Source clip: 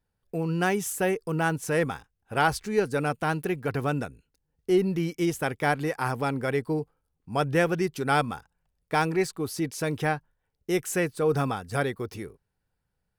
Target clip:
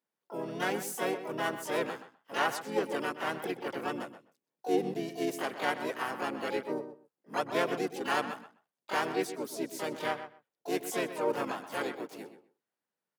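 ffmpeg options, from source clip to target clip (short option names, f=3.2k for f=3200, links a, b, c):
-filter_complex "[0:a]highpass=f=220:w=0.5412,highpass=f=220:w=1.3066,asplit=4[a][b][c][d];[b]asetrate=35002,aresample=44100,atempo=1.25992,volume=-6dB[e];[c]asetrate=55563,aresample=44100,atempo=0.793701,volume=-3dB[f];[d]asetrate=88200,aresample=44100,atempo=0.5,volume=-7dB[g];[a][e][f][g]amix=inputs=4:normalize=0,asplit=2[h][i];[i]adelay=126,lowpass=f=3.6k:p=1,volume=-11dB,asplit=2[j][k];[k]adelay=126,lowpass=f=3.6k:p=1,volume=0.17[l];[j][l]amix=inputs=2:normalize=0[m];[h][m]amix=inputs=2:normalize=0,volume=-9dB"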